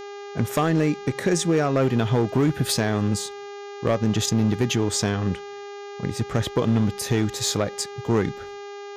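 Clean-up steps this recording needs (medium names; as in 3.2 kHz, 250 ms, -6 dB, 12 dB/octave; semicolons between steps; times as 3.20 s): clip repair -14 dBFS; de-hum 405 Hz, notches 17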